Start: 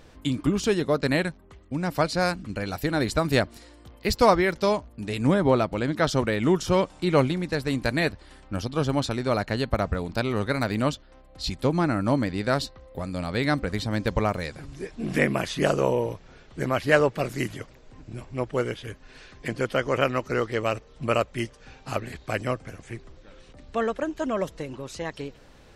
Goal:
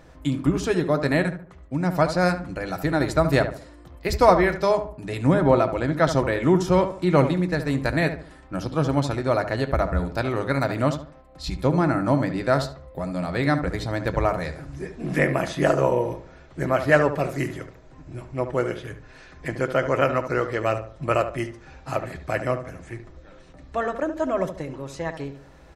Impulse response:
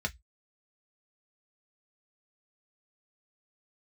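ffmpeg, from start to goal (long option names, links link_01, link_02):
-filter_complex "[0:a]asplit=2[link_01][link_02];[link_02]adelay=72,lowpass=frequency=1800:poles=1,volume=-9dB,asplit=2[link_03][link_04];[link_04]adelay=72,lowpass=frequency=1800:poles=1,volume=0.37,asplit=2[link_05][link_06];[link_06]adelay=72,lowpass=frequency=1800:poles=1,volume=0.37,asplit=2[link_07][link_08];[link_08]adelay=72,lowpass=frequency=1800:poles=1,volume=0.37[link_09];[link_01][link_03][link_05][link_07][link_09]amix=inputs=5:normalize=0,asplit=2[link_10][link_11];[1:a]atrim=start_sample=2205,atrim=end_sample=3528[link_12];[link_11][link_12]afir=irnorm=-1:irlink=0,volume=-9dB[link_13];[link_10][link_13]amix=inputs=2:normalize=0"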